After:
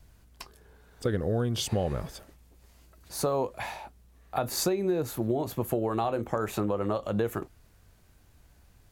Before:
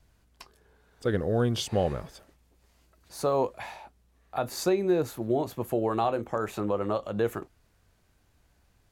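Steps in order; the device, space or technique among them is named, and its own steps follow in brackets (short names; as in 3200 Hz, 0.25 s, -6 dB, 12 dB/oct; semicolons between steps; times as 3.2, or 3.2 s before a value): ASMR close-microphone chain (low shelf 190 Hz +4.5 dB; compressor 5:1, threshold -28 dBFS, peak gain reduction 9 dB; high shelf 10000 Hz +7 dB); gain +3.5 dB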